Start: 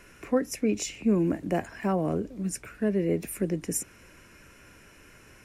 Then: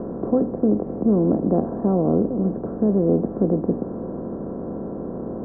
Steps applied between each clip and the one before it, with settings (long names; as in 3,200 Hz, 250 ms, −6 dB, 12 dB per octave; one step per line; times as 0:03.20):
compressor on every frequency bin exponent 0.4
Bessel low-pass filter 630 Hz, order 8
level +4 dB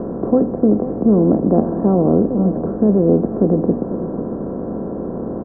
single-tap delay 499 ms −12.5 dB
level +5 dB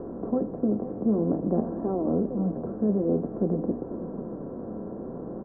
flanger 0.52 Hz, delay 2.2 ms, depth 7.9 ms, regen −44%
level −7.5 dB